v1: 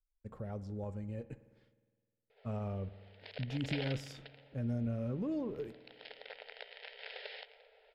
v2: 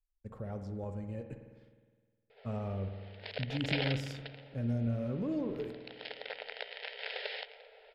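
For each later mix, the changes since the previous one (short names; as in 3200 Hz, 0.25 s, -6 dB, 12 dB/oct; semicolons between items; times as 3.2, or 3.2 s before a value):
speech: send +10.0 dB; background +7.0 dB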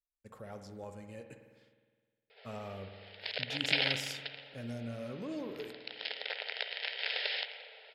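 background: send +7.5 dB; master: add tilt +3.5 dB/oct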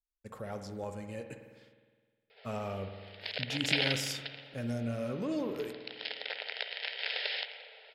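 speech +6.0 dB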